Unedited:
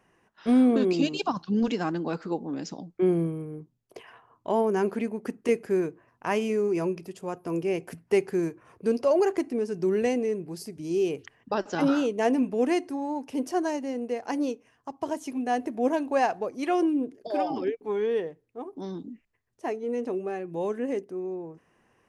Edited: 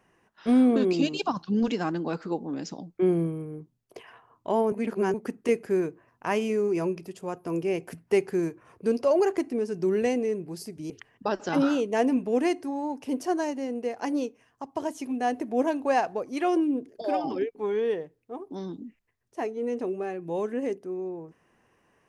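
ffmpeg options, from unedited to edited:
-filter_complex "[0:a]asplit=4[a][b][c][d];[a]atrim=end=4.722[e];[b]atrim=start=4.718:end=5.142,asetpts=PTS-STARTPTS,areverse[f];[c]atrim=start=5.138:end=10.902[g];[d]atrim=start=11.158[h];[e][f]acrossfade=d=0.004:c1=hsin:c2=hsin[i];[i][g]acrossfade=d=0.004:c1=hsin:c2=hsin[j];[j][h]acrossfade=d=0.004:c1=hsin:c2=hsin"

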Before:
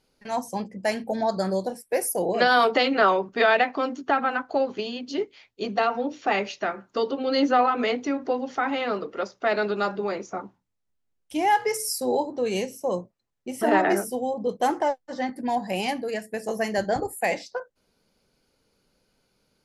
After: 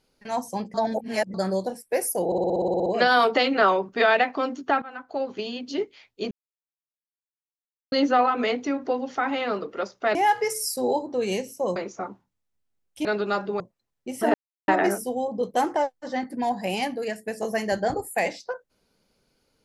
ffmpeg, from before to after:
-filter_complex "[0:a]asplit=21[a][b][c][d][e][f][g][h][i][j][k][l][m][n][o][p][q][r][s][t][u];[a]atrim=end=0.742[v];[b]atrim=start=0.738:end=1.342,asetpts=PTS-STARTPTS,areverse[w];[c]atrim=start=1.338:end=2.322[x];[d]atrim=start=2.258:end=2.322[y];[e]atrim=start=2.258:end=2.322[z];[f]atrim=start=2.258:end=2.322[aa];[g]atrim=start=2.258:end=2.322[ab];[h]atrim=start=2.258:end=2.322[ac];[i]atrim=start=2.258:end=2.322[ad];[j]atrim=start=2.258:end=2.322[ae];[k]atrim=start=2.258:end=2.322[af];[l]atrim=start=2.258:end=2.322[ag];[m]atrim=start=2.258:end=4.22,asetpts=PTS-STARTPTS,afade=t=out:st=1.958:d=0.004:c=hsin:silence=0.1[ah];[n]atrim=start=4.22:end=5.71,asetpts=PTS-STARTPTS,afade=t=in:d=0.69:silence=0.1,afade=t=out:st=1.486:d=0.004:c=hsin[ai];[o]atrim=start=5.71:end=7.32,asetpts=PTS-STARTPTS,volume=0[aj];[p]atrim=start=7.32:end=9.552,asetpts=PTS-STARTPTS,afade=t=in:d=0.004:c=hsin[ak];[q]atrim=start=11.388:end=13.002[al];[r]atrim=start=10.098:end=11.392[am];[s]atrim=start=9.548:end=10.102[an];[t]atrim=start=12.998:end=13.74,asetpts=PTS-STARTPTS,afade=t=out:st=0.738:d=0.004:c=hsin,apad=pad_dur=0.34[ao];[u]atrim=start=13.74,asetpts=PTS-STARTPTS,afade=t=in:d=0.004:c=hsin[ap];[v][w]acrossfade=d=0.004:c1=hsin:c2=hsin[aq];[aq][x]acrossfade=d=0.004:c1=hsin:c2=hsin[ar];[ar][y]acrossfade=d=0.004:c1=hsin:c2=hsin[as];[as][z]acrossfade=d=0.004:c1=hsin:c2=hsin[at];[at][aa]acrossfade=d=0.004:c1=hsin:c2=hsin[au];[au][ab]acrossfade=d=0.004:c1=hsin:c2=hsin[av];[av][ac]acrossfade=d=0.004:c1=hsin:c2=hsin[aw];[aw][ad]acrossfade=d=0.004:c1=hsin:c2=hsin[ax];[ax][ae]acrossfade=d=0.004:c1=hsin:c2=hsin[ay];[ay][af]acrossfade=d=0.004:c1=hsin:c2=hsin[az];[az][ag]acrossfade=d=0.004:c1=hsin:c2=hsin[ba];[ah][ai][aj][ak]concat=n=4:v=0:a=1[bb];[ba][bb]acrossfade=d=0.004:c1=hsin:c2=hsin[bc];[bc][al]acrossfade=d=0.004:c1=hsin:c2=hsin[bd];[bd][am]acrossfade=d=0.004:c1=hsin:c2=hsin[be];[be][an]acrossfade=d=0.004:c1=hsin:c2=hsin[bf];[ao][ap]concat=n=2:v=0:a=1[bg];[bf][bg]acrossfade=d=0.004:c1=hsin:c2=hsin"

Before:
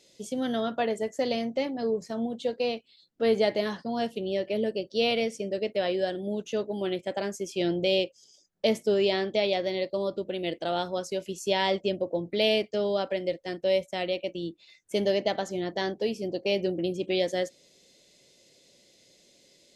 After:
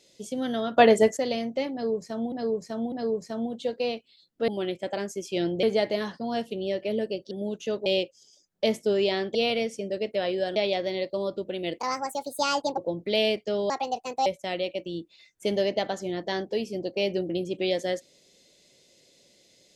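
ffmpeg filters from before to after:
-filter_complex "[0:a]asplit=15[a][b][c][d][e][f][g][h][i][j][k][l][m][n][o];[a]atrim=end=0.772[p];[b]atrim=start=0.768:end=1.172,asetpts=PTS-STARTPTS,volume=11dB[q];[c]atrim=start=1.168:end=2.322[r];[d]atrim=start=1.718:end=2.322[s];[e]atrim=start=1.718:end=3.282[t];[f]atrim=start=6.718:end=7.872[u];[g]atrim=start=3.278:end=4.962[v];[h]atrim=start=6.168:end=6.722[w];[i]atrim=start=7.868:end=9.362[x];[j]atrim=start=4.958:end=6.172[y];[k]atrim=start=9.358:end=10.594[z];[l]atrim=start=10.59:end=12.04,asetpts=PTS-STARTPTS,asetrate=64827,aresample=44100[aa];[m]atrim=start=12.036:end=12.964[ab];[n]atrim=start=12.96:end=13.75,asetpts=PTS-STARTPTS,asetrate=61740,aresample=44100[ac];[o]atrim=start=13.746[ad];[p][q]acrossfade=d=0.004:c1=hsin:c2=hsin[ae];[ae][r]acrossfade=d=0.004:c1=hsin:c2=hsin[af];[af][s]acrossfade=d=0.004:c1=hsin:c2=hsin[ag];[ag][t]acrossfade=d=0.004:c1=hsin:c2=hsin[ah];[ah][u]acrossfade=d=0.004:c1=hsin:c2=hsin[ai];[ai][v]acrossfade=d=0.004:c1=hsin:c2=hsin[aj];[aj][w]acrossfade=d=0.004:c1=hsin:c2=hsin[ak];[ak][x]acrossfade=d=0.004:c1=hsin:c2=hsin[al];[al][y]acrossfade=d=0.004:c1=hsin:c2=hsin[am];[am][z]acrossfade=d=0.004:c1=hsin:c2=hsin[an];[an][aa]acrossfade=d=0.004:c1=hsin:c2=hsin[ao];[ao][ab]acrossfade=d=0.004:c1=hsin:c2=hsin[ap];[ap][ac]acrossfade=d=0.004:c1=hsin:c2=hsin[aq];[aq][ad]acrossfade=d=0.004:c1=hsin:c2=hsin"

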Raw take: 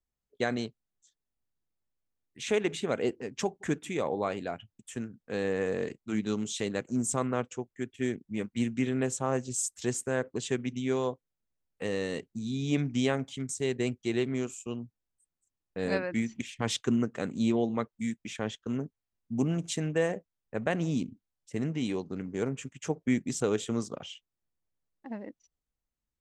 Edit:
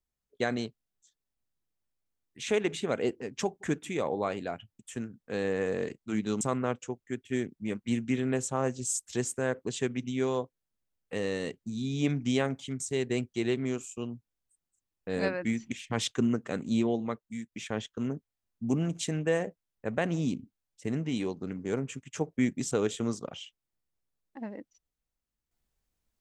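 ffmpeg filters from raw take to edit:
-filter_complex "[0:a]asplit=3[a][b][c];[a]atrim=end=6.412[d];[b]atrim=start=7.098:end=18.21,asetpts=PTS-STARTPTS,afade=t=out:st=10.352:d=0.76:silence=0.398107[e];[c]atrim=start=18.21,asetpts=PTS-STARTPTS,afade=t=in:d=0.004:c=hsin:silence=0.398107[f];[e][f]concat=n=2:v=0:a=1[g];[d][g]acrossfade=d=0.004:c1=hsin:c2=hsin"

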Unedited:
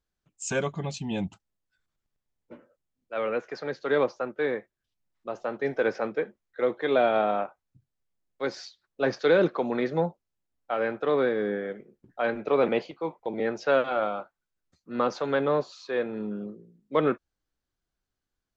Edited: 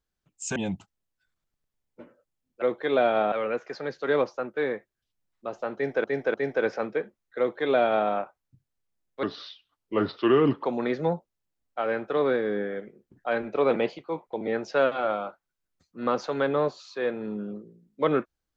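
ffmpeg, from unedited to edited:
-filter_complex "[0:a]asplit=8[a][b][c][d][e][f][g][h];[a]atrim=end=0.562[i];[b]atrim=start=1.078:end=3.142[j];[c]atrim=start=6.608:end=7.312[k];[d]atrim=start=3.138:end=5.862[l];[e]atrim=start=5.558:end=5.862[m];[f]atrim=start=5.558:end=8.454[n];[g]atrim=start=8.45:end=9.56,asetpts=PTS-STARTPTS,asetrate=34839,aresample=44100,atrim=end_sample=61963,asetpts=PTS-STARTPTS[o];[h]atrim=start=9.556[p];[i][j]acrossfade=d=0.004:c1=hsin:c2=hsin[q];[q][k]acrossfade=d=0.004:c1=hsin:c2=hsin[r];[r][l]acrossfade=d=0.004:c1=hsin:c2=hsin[s];[s][m]acrossfade=d=0.004:c1=hsin:c2=hsin[t];[t][n]acrossfade=d=0.004:c1=hsin:c2=hsin[u];[u][o]acrossfade=d=0.004:c1=hsin:c2=hsin[v];[v][p]acrossfade=d=0.004:c1=hsin:c2=hsin"

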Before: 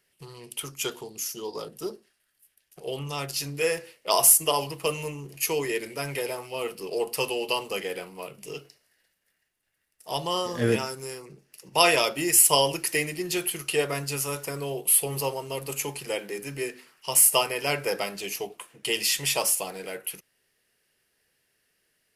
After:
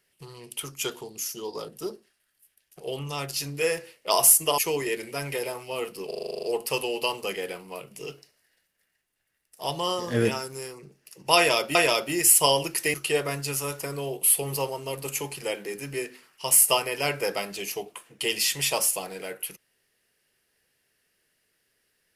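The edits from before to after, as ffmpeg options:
-filter_complex "[0:a]asplit=13[a][b][c][d][e][f][g][h][i][j][k][l][m];[a]atrim=end=4.582[n];[b]atrim=start=5.408:end=6.942[o];[c]atrim=start=6.898:end=6.942[p];[d]atrim=start=6.898:end=6.942[q];[e]atrim=start=6.898:end=6.942[r];[f]atrim=start=6.898:end=6.942[s];[g]atrim=start=6.898:end=6.942[t];[h]atrim=start=6.898:end=6.942[u];[i]atrim=start=6.898:end=6.942[v];[j]atrim=start=6.898:end=6.942[w];[k]atrim=start=6.898:end=12.222[x];[l]atrim=start=11.838:end=13.032[y];[m]atrim=start=13.578[z];[n][o]acrossfade=d=0.004:c1=hsin:c2=hsin[aa];[aa][p]acrossfade=d=0.004:c1=hsin:c2=hsin[ab];[ab][q]acrossfade=d=0.004:c1=hsin:c2=hsin[ac];[ac][r]acrossfade=d=0.004:c1=hsin:c2=hsin[ad];[ad][s]acrossfade=d=0.004:c1=hsin:c2=hsin[ae];[ae][t]acrossfade=d=0.004:c1=hsin:c2=hsin[af];[af][u]acrossfade=d=0.004:c1=hsin:c2=hsin[ag];[ag][v]acrossfade=d=0.004:c1=hsin:c2=hsin[ah];[ah][w]acrossfade=d=0.004:c1=hsin:c2=hsin[ai];[ai][x]acrossfade=d=0.004:c1=hsin:c2=hsin[aj];[aj][y]acrossfade=d=0.004:c1=hsin:c2=hsin[ak];[ak][z]acrossfade=d=0.004:c1=hsin:c2=hsin"

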